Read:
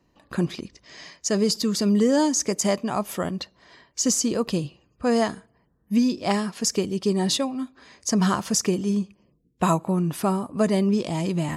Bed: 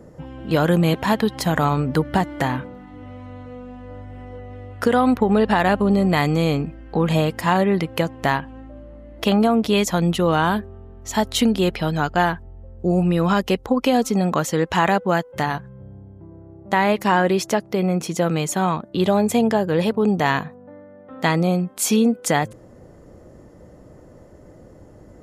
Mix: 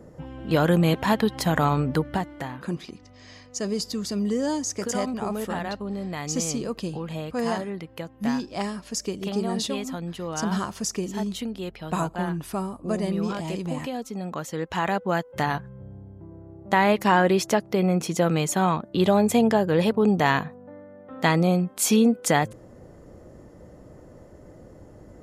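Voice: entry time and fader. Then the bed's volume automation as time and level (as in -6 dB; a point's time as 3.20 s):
2.30 s, -6.0 dB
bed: 1.87 s -2.5 dB
2.60 s -14 dB
14.07 s -14 dB
15.56 s -1.5 dB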